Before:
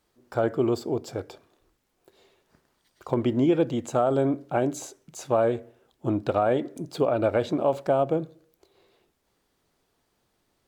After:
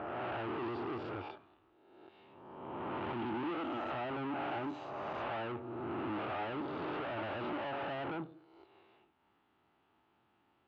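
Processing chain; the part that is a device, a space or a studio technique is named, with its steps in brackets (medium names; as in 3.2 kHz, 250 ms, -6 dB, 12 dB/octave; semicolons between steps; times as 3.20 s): reverse spectral sustain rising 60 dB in 1.36 s; 3.43–3.93 s: Chebyshev band-pass 260–8300 Hz, order 4; guitar amplifier (valve stage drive 35 dB, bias 0.45; tone controls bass +2 dB, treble -12 dB; cabinet simulation 97–3800 Hz, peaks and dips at 150 Hz -5 dB, 320 Hz +4 dB, 500 Hz -7 dB, 850 Hz +8 dB, 1.3 kHz +6 dB, 2.8 kHz +7 dB); trim -3.5 dB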